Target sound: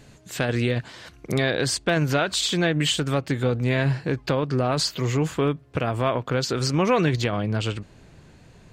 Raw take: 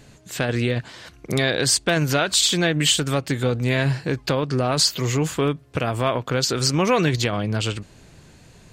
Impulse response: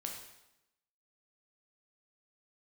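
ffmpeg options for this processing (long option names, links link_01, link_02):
-af "asetnsamples=nb_out_samples=441:pad=0,asendcmd='1.33 highshelf g -9.5',highshelf=frequency=4200:gain=-2,volume=-1dB"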